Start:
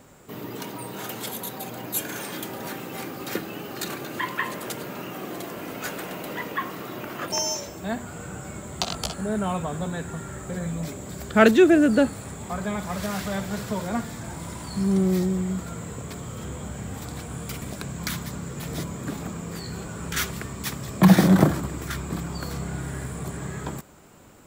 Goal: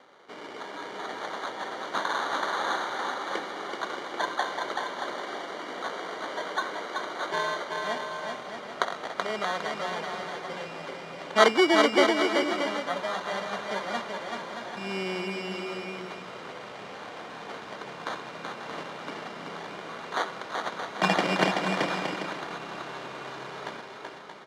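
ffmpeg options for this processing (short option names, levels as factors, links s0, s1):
-filter_complex "[0:a]asettb=1/sr,asplit=3[s0][s1][s2];[s0]atrim=end=1.994[s3];[s1]atrim=start=1.99:end=2.85,asetpts=PTS-STARTPTS,afade=t=in:d=0.004:c=qsin,afade=t=out:st=0.856:d=0.004:c=qsin,equalizer=f=1600:t=o:w=1.6:g=11.5[s4];[s2]atrim=start=2.846[s5];[s3][s4]acrossfade=d=0.004:c1=hsin:c2=qsin[s6];[s6][s5]acrossfade=d=0.004:c1=qsin:c2=hsin,acrusher=samples=17:mix=1:aa=0.000001,highpass=510,lowpass=4100,asplit=2[s7][s8];[s8]aecho=0:1:380|627|787.6|891.9|959.7:0.631|0.398|0.251|0.158|0.1[s9];[s7][s9]amix=inputs=2:normalize=0"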